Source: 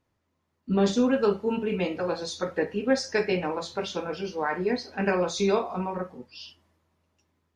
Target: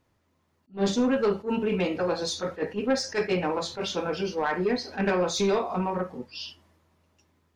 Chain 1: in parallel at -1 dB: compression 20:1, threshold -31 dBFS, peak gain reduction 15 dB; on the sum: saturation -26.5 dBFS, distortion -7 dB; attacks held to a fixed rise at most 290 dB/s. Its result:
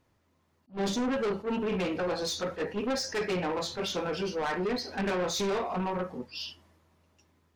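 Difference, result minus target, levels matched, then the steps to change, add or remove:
saturation: distortion +9 dB
change: saturation -17 dBFS, distortion -16 dB

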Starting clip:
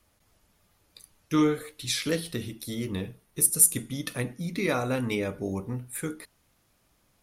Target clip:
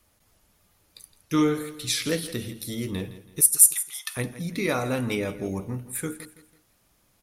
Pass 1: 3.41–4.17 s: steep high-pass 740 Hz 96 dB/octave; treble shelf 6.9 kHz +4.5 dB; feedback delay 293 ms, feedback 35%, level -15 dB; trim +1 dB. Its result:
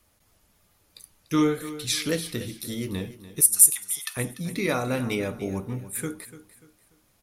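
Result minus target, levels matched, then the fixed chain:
echo 128 ms late
3.41–4.17 s: steep high-pass 740 Hz 96 dB/octave; treble shelf 6.9 kHz +4.5 dB; feedback delay 165 ms, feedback 35%, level -15 dB; trim +1 dB

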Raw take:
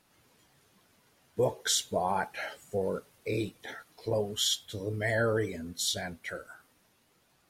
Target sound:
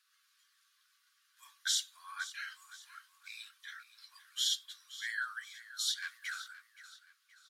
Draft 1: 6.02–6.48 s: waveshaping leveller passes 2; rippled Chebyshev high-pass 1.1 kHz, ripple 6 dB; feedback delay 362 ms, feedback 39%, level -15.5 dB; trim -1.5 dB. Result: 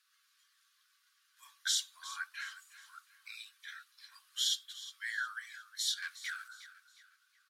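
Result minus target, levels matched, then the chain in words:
echo 161 ms early
6.02–6.48 s: waveshaping leveller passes 2; rippled Chebyshev high-pass 1.1 kHz, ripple 6 dB; feedback delay 523 ms, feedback 39%, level -15.5 dB; trim -1.5 dB

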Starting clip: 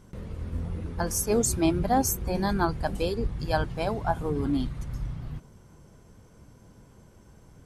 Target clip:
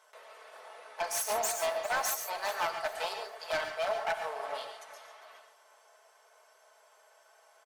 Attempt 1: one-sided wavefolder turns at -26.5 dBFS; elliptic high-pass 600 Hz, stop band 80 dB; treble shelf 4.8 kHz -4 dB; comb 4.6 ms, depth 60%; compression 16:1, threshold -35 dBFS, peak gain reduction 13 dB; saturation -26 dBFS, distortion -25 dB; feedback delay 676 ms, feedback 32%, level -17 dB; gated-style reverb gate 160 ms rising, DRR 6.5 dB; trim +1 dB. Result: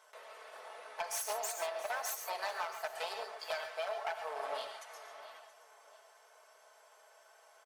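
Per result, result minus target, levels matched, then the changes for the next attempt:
echo 275 ms late; compression: peak gain reduction +13 dB
change: feedback delay 401 ms, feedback 32%, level -17 dB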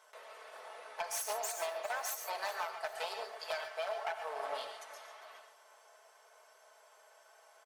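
compression: peak gain reduction +13 dB
remove: compression 16:1, threshold -35 dBFS, peak gain reduction 13 dB

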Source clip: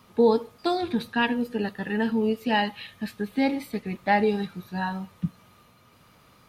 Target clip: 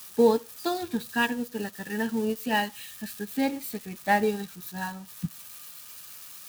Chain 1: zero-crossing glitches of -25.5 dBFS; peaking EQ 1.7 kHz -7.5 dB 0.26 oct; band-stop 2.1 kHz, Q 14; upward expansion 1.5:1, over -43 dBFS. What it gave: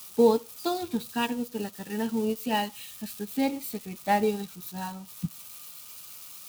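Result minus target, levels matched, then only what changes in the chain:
2 kHz band -6.5 dB
change: peaking EQ 1.7 kHz +3.5 dB 0.26 oct

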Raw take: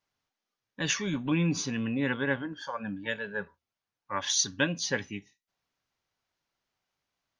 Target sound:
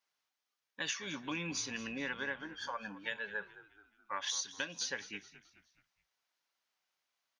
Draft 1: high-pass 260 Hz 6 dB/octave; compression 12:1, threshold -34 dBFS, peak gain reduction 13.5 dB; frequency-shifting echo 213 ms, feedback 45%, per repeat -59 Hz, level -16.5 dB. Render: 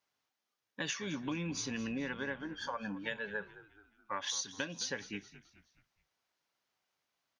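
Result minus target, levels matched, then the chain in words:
250 Hz band +5.0 dB
high-pass 1 kHz 6 dB/octave; compression 12:1, threshold -34 dBFS, peak gain reduction 13.5 dB; frequency-shifting echo 213 ms, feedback 45%, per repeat -59 Hz, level -16.5 dB

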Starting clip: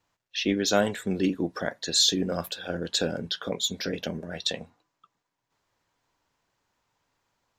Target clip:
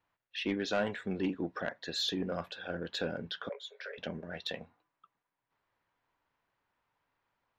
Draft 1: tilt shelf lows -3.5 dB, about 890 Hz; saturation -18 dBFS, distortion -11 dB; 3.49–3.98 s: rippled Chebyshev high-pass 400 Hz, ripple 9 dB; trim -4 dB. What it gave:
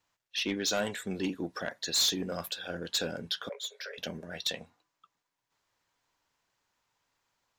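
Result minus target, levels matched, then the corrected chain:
2 kHz band -2.5 dB
low-pass 2.3 kHz 12 dB/octave; tilt shelf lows -3.5 dB, about 890 Hz; saturation -18 dBFS, distortion -15 dB; 3.49–3.98 s: rippled Chebyshev high-pass 400 Hz, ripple 9 dB; trim -4 dB

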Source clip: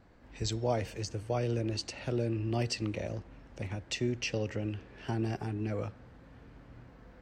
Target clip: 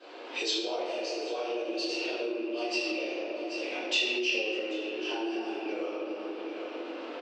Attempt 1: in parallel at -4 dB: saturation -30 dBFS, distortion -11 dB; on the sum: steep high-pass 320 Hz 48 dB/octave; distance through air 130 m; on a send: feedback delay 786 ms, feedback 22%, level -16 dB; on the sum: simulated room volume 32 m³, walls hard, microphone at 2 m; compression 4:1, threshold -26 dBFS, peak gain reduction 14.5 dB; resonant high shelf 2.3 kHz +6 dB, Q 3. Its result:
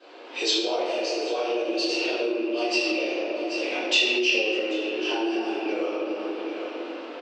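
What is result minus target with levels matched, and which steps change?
compression: peak gain reduction -7 dB
change: compression 4:1, threshold -35 dBFS, peak gain reduction 21 dB

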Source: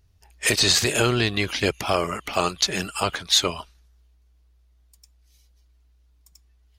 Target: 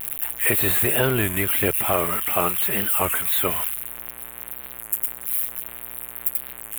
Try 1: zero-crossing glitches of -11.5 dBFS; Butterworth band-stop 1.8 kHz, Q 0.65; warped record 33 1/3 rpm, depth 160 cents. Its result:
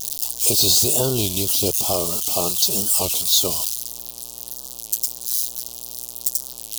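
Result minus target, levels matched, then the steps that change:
2 kHz band -16.5 dB
change: Butterworth band-stop 5.4 kHz, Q 0.65

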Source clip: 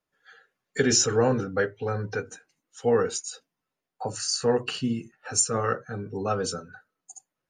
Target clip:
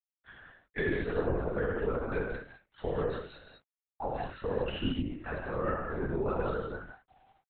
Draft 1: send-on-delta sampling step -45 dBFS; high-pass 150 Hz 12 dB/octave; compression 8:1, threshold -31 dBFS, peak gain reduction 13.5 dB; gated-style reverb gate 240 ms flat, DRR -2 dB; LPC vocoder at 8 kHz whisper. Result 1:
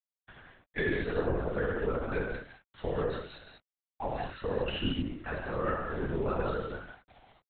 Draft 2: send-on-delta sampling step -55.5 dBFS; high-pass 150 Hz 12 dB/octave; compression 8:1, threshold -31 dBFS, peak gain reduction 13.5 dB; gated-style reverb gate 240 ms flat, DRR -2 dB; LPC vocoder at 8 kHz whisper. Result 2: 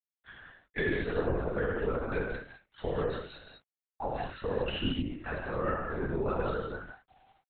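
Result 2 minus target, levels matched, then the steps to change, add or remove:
4 kHz band +3.5 dB
add after compression: treble shelf 2.6 kHz -6.5 dB

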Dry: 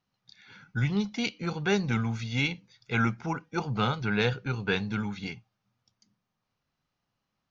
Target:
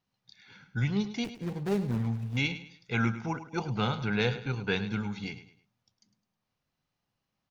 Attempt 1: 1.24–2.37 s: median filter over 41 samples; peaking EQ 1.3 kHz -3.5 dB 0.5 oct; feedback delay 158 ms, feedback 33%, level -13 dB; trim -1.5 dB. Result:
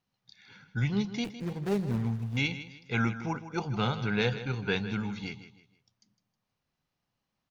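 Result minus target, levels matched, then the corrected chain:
echo 53 ms late
1.24–2.37 s: median filter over 41 samples; peaking EQ 1.3 kHz -3.5 dB 0.5 oct; feedback delay 105 ms, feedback 33%, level -13 dB; trim -1.5 dB

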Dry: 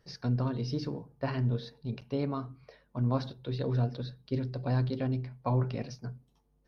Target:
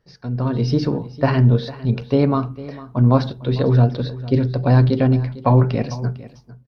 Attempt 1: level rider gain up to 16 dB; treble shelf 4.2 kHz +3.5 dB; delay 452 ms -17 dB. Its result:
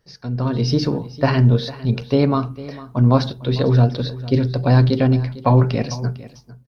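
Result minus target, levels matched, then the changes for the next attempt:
8 kHz band +7.5 dB
change: treble shelf 4.2 kHz -7.5 dB

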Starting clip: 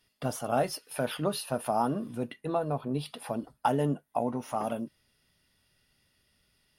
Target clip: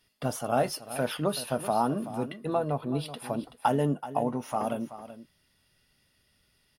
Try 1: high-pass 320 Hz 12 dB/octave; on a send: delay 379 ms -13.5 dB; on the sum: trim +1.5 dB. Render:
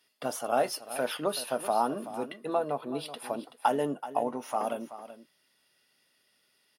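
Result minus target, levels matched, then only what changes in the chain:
250 Hz band -4.0 dB
remove: high-pass 320 Hz 12 dB/octave

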